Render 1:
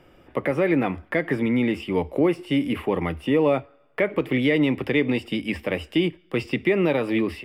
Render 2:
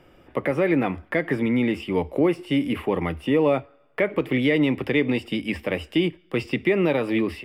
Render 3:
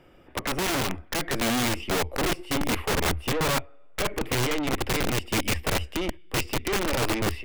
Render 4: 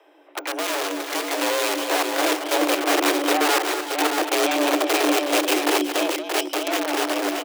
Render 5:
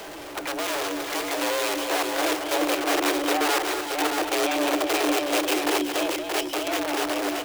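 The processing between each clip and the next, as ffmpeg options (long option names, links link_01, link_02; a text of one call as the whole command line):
ffmpeg -i in.wav -af anull out.wav
ffmpeg -i in.wav -af "aeval=exprs='(tanh(15.8*val(0)+0.45)-tanh(0.45))/15.8':channel_layout=same,asubboost=boost=11:cutoff=51,aeval=exprs='(mod(10.6*val(0)+1,2)-1)/10.6':channel_layout=same" out.wav
ffmpeg -i in.wav -filter_complex "[0:a]dynaudnorm=framelen=390:gausssize=9:maxgain=4dB,afreqshift=290,asplit=2[link_01][link_02];[link_02]aecho=0:1:224|364|379|626:0.376|0.168|0.2|0.531[link_03];[link_01][link_03]amix=inputs=2:normalize=0" out.wav
ffmpeg -i in.wav -af "aeval=exprs='val(0)+0.5*0.0376*sgn(val(0))':channel_layout=same,volume=-4.5dB" out.wav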